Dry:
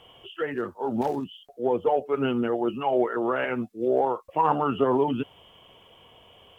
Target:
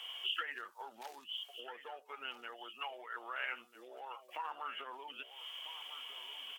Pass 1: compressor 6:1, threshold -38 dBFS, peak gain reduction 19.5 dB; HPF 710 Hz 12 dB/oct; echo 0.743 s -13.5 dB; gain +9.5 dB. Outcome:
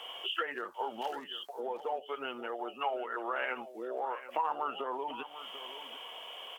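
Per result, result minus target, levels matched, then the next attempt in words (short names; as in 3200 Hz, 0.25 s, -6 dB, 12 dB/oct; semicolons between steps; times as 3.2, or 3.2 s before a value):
echo 0.553 s early; 1000 Hz band +3.5 dB
compressor 6:1, threshold -38 dBFS, peak gain reduction 19.5 dB; HPF 710 Hz 12 dB/oct; echo 1.296 s -13.5 dB; gain +9.5 dB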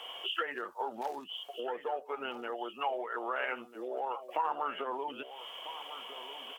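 1000 Hz band +3.5 dB
compressor 6:1, threshold -38 dBFS, peak gain reduction 19.5 dB; HPF 1800 Hz 12 dB/oct; echo 1.296 s -13.5 dB; gain +9.5 dB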